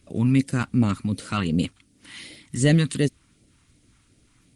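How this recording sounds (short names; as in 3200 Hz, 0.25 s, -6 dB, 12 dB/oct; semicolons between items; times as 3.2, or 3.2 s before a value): phasing stages 2, 2.7 Hz, lowest notch 510–1100 Hz; Opus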